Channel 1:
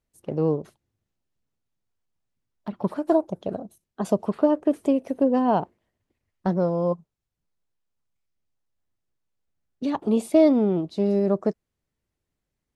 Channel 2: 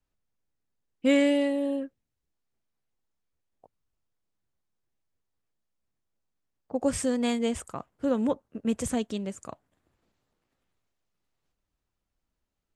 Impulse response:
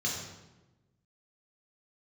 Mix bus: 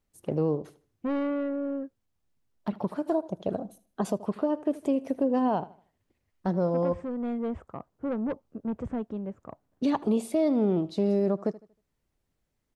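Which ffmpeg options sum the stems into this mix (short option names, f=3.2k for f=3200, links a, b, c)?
-filter_complex "[0:a]volume=1.5dB,asplit=2[a][b];[b]volume=-20dB[c];[1:a]lowpass=1.1k,asoftclip=type=tanh:threshold=-24.5dB,volume=-0.5dB[d];[c]aecho=0:1:78|156|234|312:1|0.28|0.0784|0.022[e];[a][d][e]amix=inputs=3:normalize=0,alimiter=limit=-16.5dB:level=0:latency=1:release=435"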